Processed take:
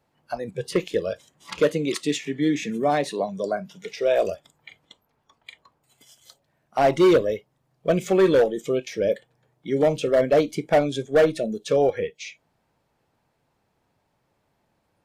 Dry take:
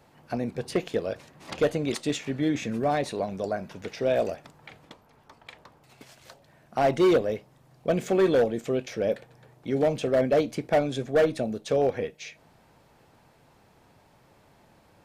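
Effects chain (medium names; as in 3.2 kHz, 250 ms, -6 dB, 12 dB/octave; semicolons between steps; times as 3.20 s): spectral noise reduction 16 dB; 1.60–3.89 s: high-pass 140 Hz 24 dB/octave; trim +4 dB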